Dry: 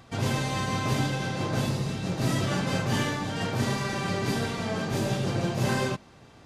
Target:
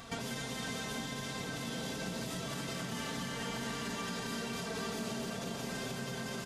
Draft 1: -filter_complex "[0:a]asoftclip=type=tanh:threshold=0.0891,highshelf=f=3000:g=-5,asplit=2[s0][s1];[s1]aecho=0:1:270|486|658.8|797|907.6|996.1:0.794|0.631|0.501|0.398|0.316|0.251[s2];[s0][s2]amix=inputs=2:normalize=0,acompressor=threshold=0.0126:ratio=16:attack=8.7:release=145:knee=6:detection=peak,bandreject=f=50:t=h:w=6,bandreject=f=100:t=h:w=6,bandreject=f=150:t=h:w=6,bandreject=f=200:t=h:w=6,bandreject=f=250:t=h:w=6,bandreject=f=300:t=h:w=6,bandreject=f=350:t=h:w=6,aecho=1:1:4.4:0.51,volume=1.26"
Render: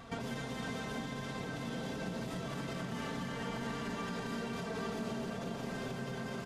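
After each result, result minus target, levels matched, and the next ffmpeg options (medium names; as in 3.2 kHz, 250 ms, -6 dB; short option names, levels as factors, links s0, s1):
saturation: distortion +15 dB; 8 kHz band -8.0 dB
-filter_complex "[0:a]asoftclip=type=tanh:threshold=0.266,highshelf=f=3000:g=-5,asplit=2[s0][s1];[s1]aecho=0:1:270|486|658.8|797|907.6|996.1:0.794|0.631|0.501|0.398|0.316|0.251[s2];[s0][s2]amix=inputs=2:normalize=0,acompressor=threshold=0.0126:ratio=16:attack=8.7:release=145:knee=6:detection=peak,bandreject=f=50:t=h:w=6,bandreject=f=100:t=h:w=6,bandreject=f=150:t=h:w=6,bandreject=f=200:t=h:w=6,bandreject=f=250:t=h:w=6,bandreject=f=300:t=h:w=6,bandreject=f=350:t=h:w=6,aecho=1:1:4.4:0.51,volume=1.26"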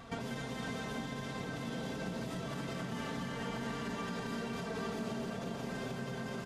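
8 kHz band -8.0 dB
-filter_complex "[0:a]asoftclip=type=tanh:threshold=0.266,highshelf=f=3000:g=7,asplit=2[s0][s1];[s1]aecho=0:1:270|486|658.8|797|907.6|996.1:0.794|0.631|0.501|0.398|0.316|0.251[s2];[s0][s2]amix=inputs=2:normalize=0,acompressor=threshold=0.0126:ratio=16:attack=8.7:release=145:knee=6:detection=peak,bandreject=f=50:t=h:w=6,bandreject=f=100:t=h:w=6,bandreject=f=150:t=h:w=6,bandreject=f=200:t=h:w=6,bandreject=f=250:t=h:w=6,bandreject=f=300:t=h:w=6,bandreject=f=350:t=h:w=6,aecho=1:1:4.4:0.51,volume=1.26"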